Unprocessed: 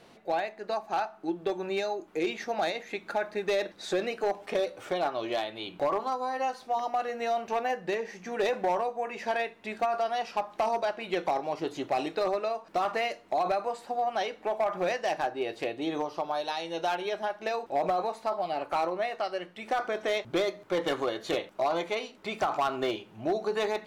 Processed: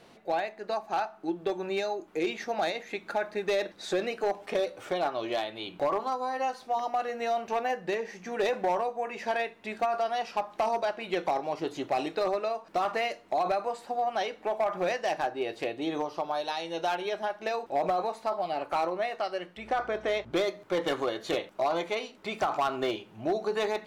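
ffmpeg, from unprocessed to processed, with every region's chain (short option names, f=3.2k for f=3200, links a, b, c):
-filter_complex "[0:a]asettb=1/sr,asplit=3[a][b][c];[a]atrim=end=19.574[d];[b]atrim=start=19.57:end=20.33,asetpts=PTS-STARTPTS,afade=t=in:d=0.004:c=qsin,afade=t=out:st=0.756:d=0.004:c=qsin,aeval=exprs='val(0)+0.00178*(sin(2*PI*60*n/s)+sin(2*PI*2*60*n/s)/2+sin(2*PI*3*60*n/s)/3+sin(2*PI*4*60*n/s)/4+sin(2*PI*5*60*n/s)/5)':c=same,aemphasis=mode=reproduction:type=cd[e];[c]atrim=start=20.326[f];[d][e]acrossfade=d=0.004:c1=hsin:c2=qsin[g];[g][f]acrossfade=d=0.004:c1=qsin:c2=hsin"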